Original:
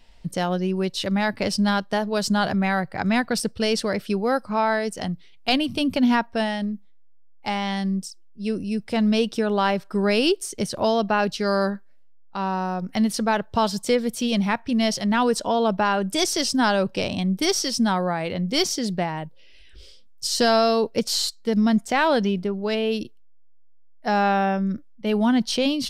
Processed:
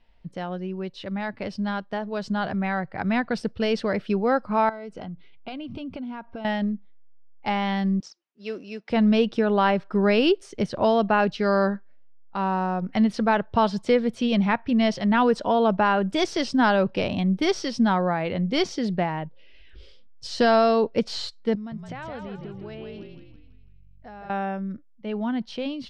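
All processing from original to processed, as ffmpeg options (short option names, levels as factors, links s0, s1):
-filter_complex "[0:a]asettb=1/sr,asplit=3[s0][s1][s2];[s0]atrim=end=4.694[s3];[s1]atrim=start=4.69:end=6.45,asetpts=PTS-STARTPTS,afade=t=in:d=0.004:c=qsin,afade=t=out:st=1.756:d=0.004:c=qsin,highshelf=f=5300:g=-10,acompressor=threshold=0.0224:ratio=8:attack=3.2:release=140:knee=1:detection=peak,asuperstop=centerf=1800:order=8:qfactor=7.5[s4];[s2]atrim=start=6.446[s5];[s3][s4]acrossfade=d=0.004:c1=hsin:c2=qsin[s6];[s6][s5]acrossfade=d=0.004:c1=qsin:c2=hsin,asettb=1/sr,asplit=3[s7][s8][s9];[s7]atrim=end=8.004[s10];[s8]atrim=start=8:end=8.9,asetpts=PTS-STARTPTS,afade=t=in:d=0.004:c=qsin,afade=t=out:st=0.896:d=0.004:c=qsin,highpass=490,highshelf=f=7700:t=q:w=3:g=-6,acrusher=bits=5:mode=log:mix=0:aa=0.000001[s11];[s9]atrim=start=8.896[s12];[s10][s11]acrossfade=d=0.004:c1=hsin:c2=qsin[s13];[s13][s12]acrossfade=d=0.004:c1=qsin:c2=hsin,asettb=1/sr,asplit=3[s14][s15][s16];[s14]atrim=end=21.554[s17];[s15]atrim=start=21.55:end=24.3,asetpts=PTS-STARTPTS,afade=t=in:d=0.004:c=qsin,afade=t=out:st=2.746:d=0.004:c=qsin,acompressor=threshold=0.0158:ratio=4:attack=3.2:release=140:knee=1:detection=peak,asplit=7[s18][s19][s20][s21][s22][s23][s24];[s19]adelay=164,afreqshift=-47,volume=0.596[s25];[s20]adelay=328,afreqshift=-94,volume=0.292[s26];[s21]adelay=492,afreqshift=-141,volume=0.143[s27];[s22]adelay=656,afreqshift=-188,volume=0.07[s28];[s23]adelay=820,afreqshift=-235,volume=0.0343[s29];[s24]adelay=984,afreqshift=-282,volume=0.0168[s30];[s18][s25][s26][s27][s28][s29][s30]amix=inputs=7:normalize=0,atrim=end_sample=121275[s31];[s16]atrim=start=24.296[s32];[s17][s31]acrossfade=d=0.004:c1=hsin:c2=qsin[s33];[s33][s32]acrossfade=d=0.004:c1=qsin:c2=hsin,lowpass=2900,dynaudnorm=f=210:g=31:m=3.76,volume=0.422"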